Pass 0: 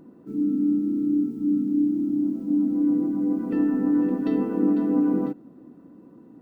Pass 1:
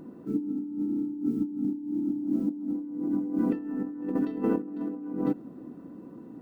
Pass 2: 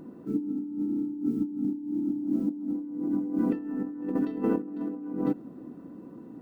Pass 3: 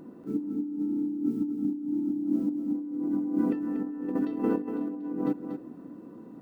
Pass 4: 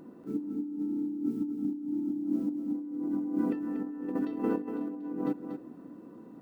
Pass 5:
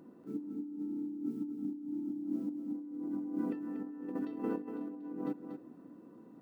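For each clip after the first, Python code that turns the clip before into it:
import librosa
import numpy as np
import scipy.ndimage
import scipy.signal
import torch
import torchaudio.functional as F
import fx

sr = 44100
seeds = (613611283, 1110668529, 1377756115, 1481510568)

y1 = fx.over_compress(x, sr, threshold_db=-27.0, ratio=-0.5)
y1 = y1 * 10.0 ** (-1.5 / 20.0)
y2 = y1
y3 = fx.low_shelf(y2, sr, hz=160.0, db=-5.5)
y3 = y3 + 10.0 ** (-8.0 / 20.0) * np.pad(y3, (int(238 * sr / 1000.0), 0))[:len(y3)]
y4 = fx.low_shelf(y3, sr, hz=420.0, db=-3.0)
y4 = y4 * 10.0 ** (-1.0 / 20.0)
y5 = scipy.signal.sosfilt(scipy.signal.butter(2, 55.0, 'highpass', fs=sr, output='sos'), y4)
y5 = y5 * 10.0 ** (-6.0 / 20.0)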